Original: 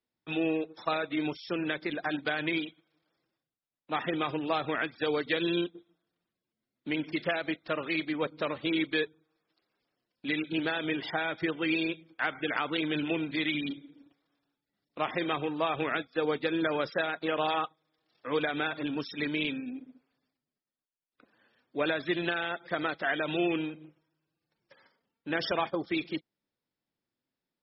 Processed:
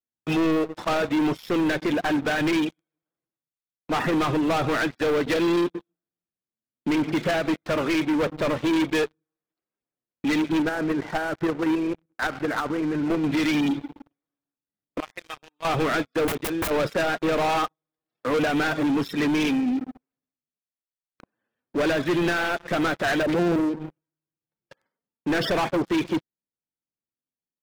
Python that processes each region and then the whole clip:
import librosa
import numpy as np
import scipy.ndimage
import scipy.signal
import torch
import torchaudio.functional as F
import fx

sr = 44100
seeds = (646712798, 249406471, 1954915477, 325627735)

y = fx.chain(x, sr, fx.lowpass(hz=1900.0, slope=24),
    fx.level_steps(step_db=10), at=(10.62, 13.24))
y = fx.chain(y, sr, fx.differentiator(),
    fx.level_steps(step_db=11),
    fx.lowpass(hz=4600.0, slope=12), at=(15.0, 15.65))
y = fx.chain(y, sr, fx.level_steps(step_db=14),
    fx.overflow_wrap(gain_db=32.5), at=(16.27, 16.71))
y = fx.chain(y, sr, fx.envelope_sharpen(power=3.0),
    fx.air_absorb(metres=180.0),
    fx.doppler_dist(depth_ms=0.42), at=(23.23, 23.8))
y = fx.peak_eq(y, sr, hz=4900.0, db=-10.0, octaves=1.8)
y = fx.leveller(y, sr, passes=5)
y = fx.low_shelf(y, sr, hz=250.0, db=4.0)
y = F.gain(torch.from_numpy(y), -3.5).numpy()